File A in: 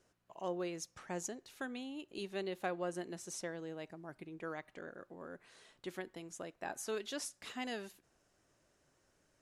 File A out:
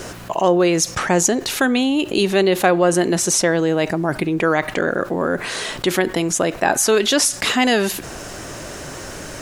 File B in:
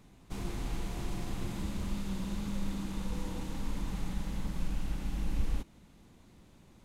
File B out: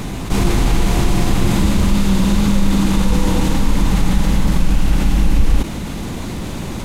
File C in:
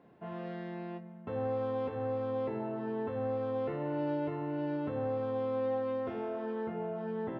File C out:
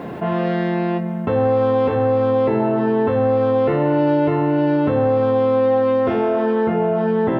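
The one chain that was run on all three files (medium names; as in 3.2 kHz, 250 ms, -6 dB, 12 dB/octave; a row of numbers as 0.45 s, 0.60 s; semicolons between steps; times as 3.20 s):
level flattener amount 50%; normalise loudness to -18 LUFS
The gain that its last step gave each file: +22.0 dB, +17.0 dB, +16.0 dB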